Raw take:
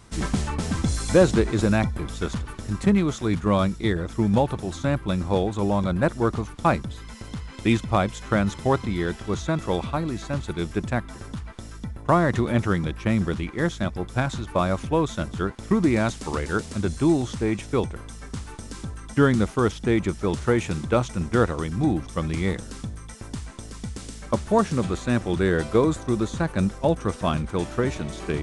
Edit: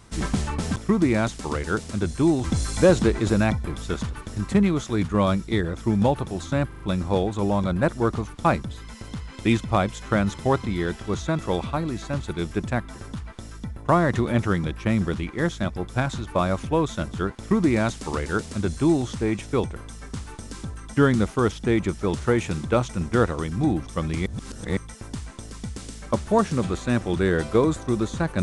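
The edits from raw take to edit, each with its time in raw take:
0:05.00: stutter 0.04 s, 4 plays
0:15.58–0:17.26: duplicate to 0:00.76
0:22.46–0:22.97: reverse

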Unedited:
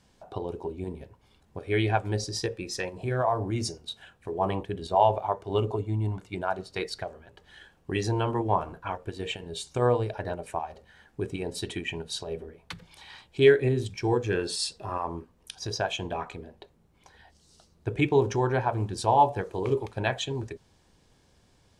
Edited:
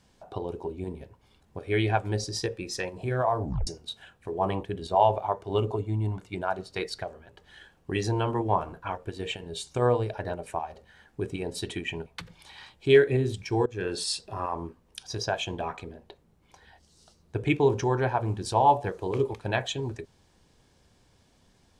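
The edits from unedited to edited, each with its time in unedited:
0:03.42: tape stop 0.25 s
0:12.06–0:12.58: remove
0:14.18–0:14.47: fade in, from −17.5 dB

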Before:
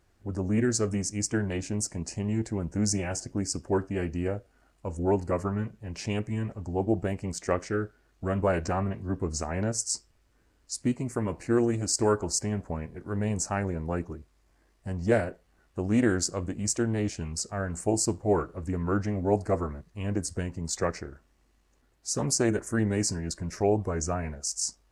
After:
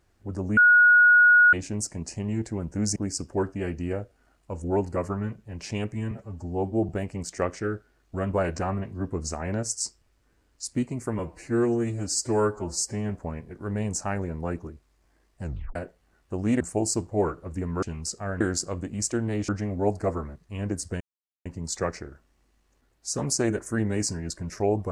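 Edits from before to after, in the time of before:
0:00.57–0:01.53: beep over 1,450 Hz −12.5 dBFS
0:02.96–0:03.31: remove
0:06.46–0:06.98: time-stretch 1.5×
0:11.28–0:12.55: time-stretch 1.5×
0:14.88: tape stop 0.33 s
0:16.06–0:17.14: swap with 0:17.72–0:18.94
0:20.46: splice in silence 0.45 s

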